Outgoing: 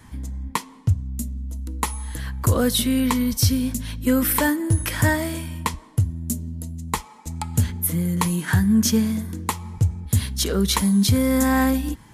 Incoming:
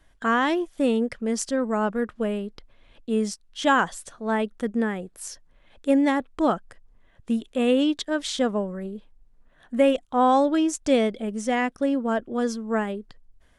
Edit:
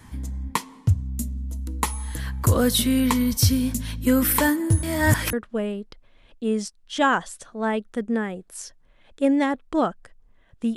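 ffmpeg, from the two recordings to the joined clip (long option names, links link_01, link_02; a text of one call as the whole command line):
ffmpeg -i cue0.wav -i cue1.wav -filter_complex "[0:a]apad=whole_dur=10.76,atrim=end=10.76,asplit=2[link_01][link_02];[link_01]atrim=end=4.832[link_03];[link_02]atrim=start=4.828:end=5.332,asetpts=PTS-STARTPTS,areverse[link_04];[1:a]atrim=start=1.988:end=7.42[link_05];[link_03][link_04]acrossfade=duration=0.004:curve1=hsin:curve2=hsin[link_06];[link_06][link_05]acrossfade=duration=0.004:curve1=hsin:curve2=hsin" out.wav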